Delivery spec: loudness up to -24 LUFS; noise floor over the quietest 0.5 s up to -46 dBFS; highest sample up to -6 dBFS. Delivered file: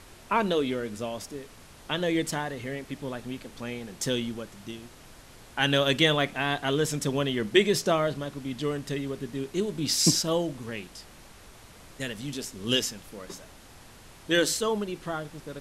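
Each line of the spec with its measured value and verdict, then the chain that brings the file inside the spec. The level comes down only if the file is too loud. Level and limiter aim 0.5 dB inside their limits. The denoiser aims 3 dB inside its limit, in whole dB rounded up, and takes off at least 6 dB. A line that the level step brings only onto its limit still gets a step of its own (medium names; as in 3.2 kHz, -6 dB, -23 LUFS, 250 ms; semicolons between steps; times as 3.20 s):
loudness -28.0 LUFS: pass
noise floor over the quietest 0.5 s -50 dBFS: pass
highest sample -7.0 dBFS: pass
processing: none needed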